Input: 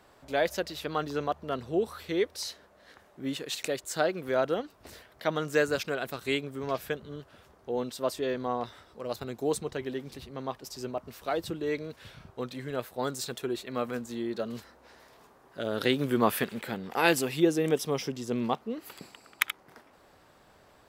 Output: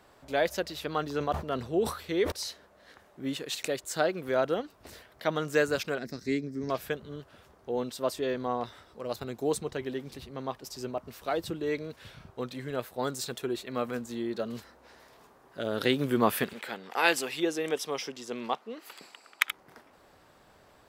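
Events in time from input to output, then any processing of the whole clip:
1.05–2.32 sustainer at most 110 dB/s
5.98–6.7 EQ curve 130 Hz 0 dB, 230 Hz +7 dB, 860 Hz -13 dB, 1300 Hz -13 dB, 1900 Hz -1 dB, 3100 Hz -18 dB, 5200 Hz +9 dB, 9200 Hz -13 dB
16.53–19.49 weighting filter A

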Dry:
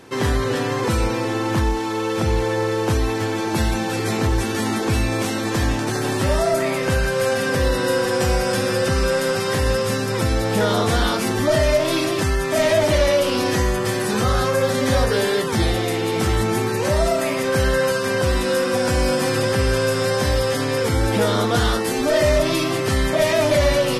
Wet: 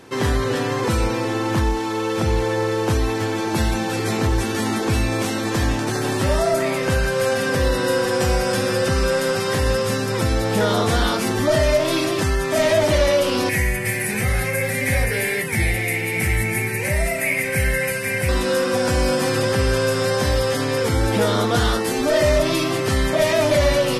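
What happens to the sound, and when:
13.49–18.29 EQ curve 160 Hz 0 dB, 260 Hz -7 dB, 810 Hz -6 dB, 1200 Hz -14 dB, 2200 Hz +13 dB, 3300 Hz -9 dB, 6700 Hz -4 dB, 9800 Hz +7 dB

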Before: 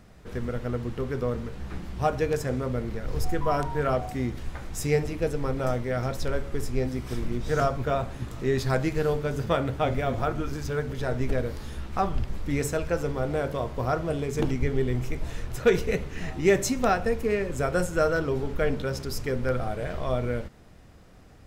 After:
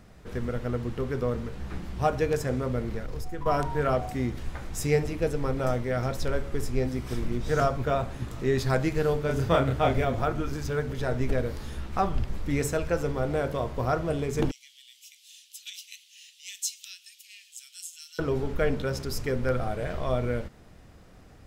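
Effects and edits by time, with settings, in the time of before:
2.99–3.46 compressor, threshold -29 dBFS
9.26–10.05 doubler 30 ms -2 dB
14.51–18.19 elliptic high-pass 3000 Hz, stop band 80 dB

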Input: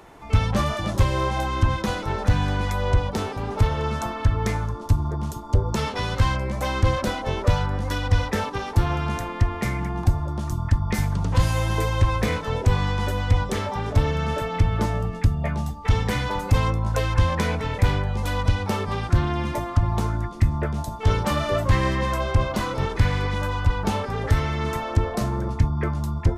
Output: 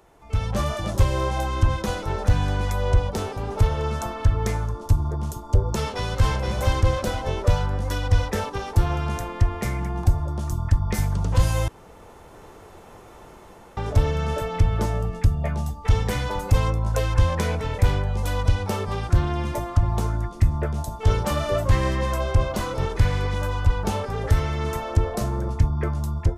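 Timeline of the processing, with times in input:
5.76–6.33 echo throw 0.47 s, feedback 30%, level -3.5 dB
11.68–13.77 room tone
whole clip: AGC gain up to 10.5 dB; graphic EQ 125/250/1000/2000/4000 Hz -3/-6/-4/-5/-4 dB; gain -5 dB

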